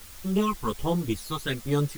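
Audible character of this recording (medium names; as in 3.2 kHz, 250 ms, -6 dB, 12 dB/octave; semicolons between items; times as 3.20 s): phasing stages 12, 1.3 Hz, lowest notch 510–2700 Hz; a quantiser's noise floor 8-bit, dither triangular; a shimmering, thickened sound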